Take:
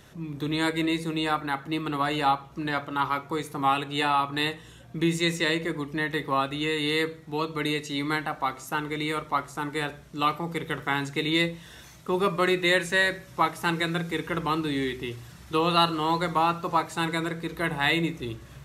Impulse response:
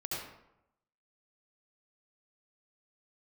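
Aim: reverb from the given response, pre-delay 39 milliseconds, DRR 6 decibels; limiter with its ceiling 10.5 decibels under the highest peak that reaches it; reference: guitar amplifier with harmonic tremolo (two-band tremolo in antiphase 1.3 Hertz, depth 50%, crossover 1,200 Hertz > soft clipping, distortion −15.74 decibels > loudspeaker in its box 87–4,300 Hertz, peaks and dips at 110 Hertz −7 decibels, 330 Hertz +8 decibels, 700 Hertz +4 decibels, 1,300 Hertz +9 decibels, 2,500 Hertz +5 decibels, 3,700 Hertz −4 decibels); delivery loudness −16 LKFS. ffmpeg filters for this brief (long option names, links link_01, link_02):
-filter_complex "[0:a]alimiter=limit=-18.5dB:level=0:latency=1,asplit=2[link_01][link_02];[1:a]atrim=start_sample=2205,adelay=39[link_03];[link_02][link_03]afir=irnorm=-1:irlink=0,volume=-8.5dB[link_04];[link_01][link_04]amix=inputs=2:normalize=0,acrossover=split=1200[link_05][link_06];[link_05]aeval=exprs='val(0)*(1-0.5/2+0.5/2*cos(2*PI*1.3*n/s))':channel_layout=same[link_07];[link_06]aeval=exprs='val(0)*(1-0.5/2-0.5/2*cos(2*PI*1.3*n/s))':channel_layout=same[link_08];[link_07][link_08]amix=inputs=2:normalize=0,asoftclip=threshold=-25dB,highpass=87,equalizer=frequency=110:width_type=q:width=4:gain=-7,equalizer=frequency=330:width_type=q:width=4:gain=8,equalizer=frequency=700:width_type=q:width=4:gain=4,equalizer=frequency=1300:width_type=q:width=4:gain=9,equalizer=frequency=2500:width_type=q:width=4:gain=5,equalizer=frequency=3700:width_type=q:width=4:gain=-4,lowpass=frequency=4300:width=0.5412,lowpass=frequency=4300:width=1.3066,volume=13dB"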